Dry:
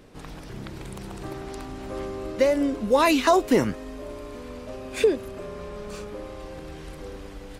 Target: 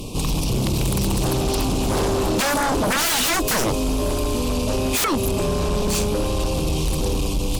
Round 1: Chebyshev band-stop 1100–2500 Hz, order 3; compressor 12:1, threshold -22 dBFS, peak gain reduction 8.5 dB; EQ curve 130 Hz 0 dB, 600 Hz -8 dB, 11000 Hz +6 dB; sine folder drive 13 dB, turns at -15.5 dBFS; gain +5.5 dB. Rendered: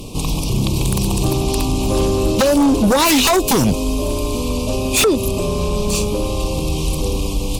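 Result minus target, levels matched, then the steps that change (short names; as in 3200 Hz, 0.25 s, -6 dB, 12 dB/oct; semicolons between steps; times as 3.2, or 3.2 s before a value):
sine folder: distortion -10 dB
change: sine folder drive 13 dB, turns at -22.5 dBFS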